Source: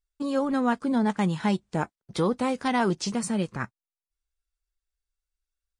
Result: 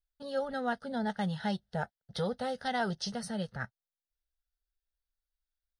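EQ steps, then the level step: dynamic EQ 6700 Hz, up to +5 dB, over -50 dBFS, Q 1.2; fixed phaser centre 1600 Hz, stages 8; -3.5 dB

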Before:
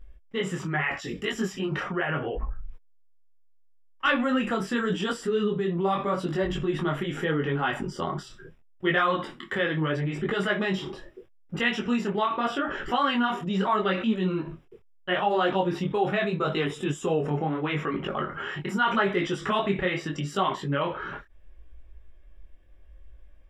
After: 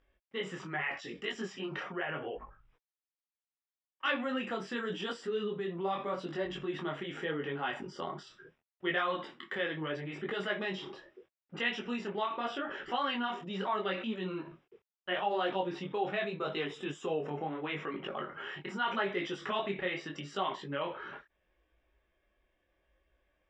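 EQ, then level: HPF 510 Hz 6 dB/oct; Bessel low-pass 4600 Hz, order 4; dynamic EQ 1300 Hz, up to -5 dB, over -42 dBFS, Q 1.4; -4.0 dB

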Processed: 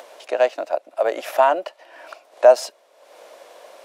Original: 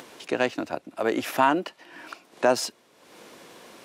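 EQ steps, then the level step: resonant high-pass 600 Hz, resonance Q 4.9; -1.5 dB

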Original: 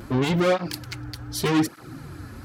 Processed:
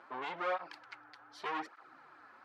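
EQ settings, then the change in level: ladder band-pass 1200 Hz, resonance 25%; +2.5 dB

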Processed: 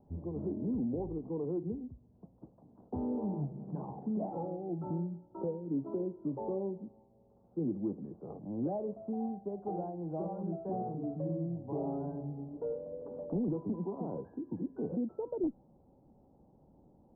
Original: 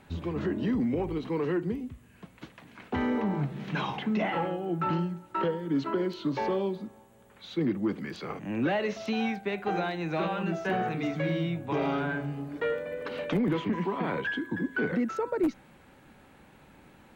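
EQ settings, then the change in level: steep low-pass 830 Hz 36 dB/oct; air absorption 480 m; -5.5 dB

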